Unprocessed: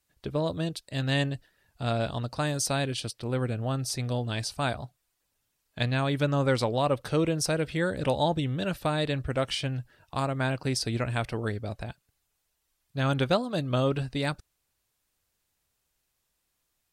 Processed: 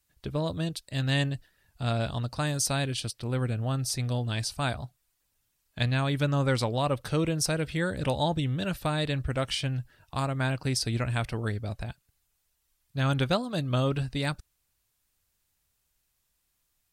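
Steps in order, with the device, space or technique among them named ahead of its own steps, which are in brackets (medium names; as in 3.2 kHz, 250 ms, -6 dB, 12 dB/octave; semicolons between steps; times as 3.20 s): smiley-face EQ (bass shelf 100 Hz +5.5 dB; peaking EQ 470 Hz -3.5 dB 1.8 oct; treble shelf 8.6 kHz +4 dB)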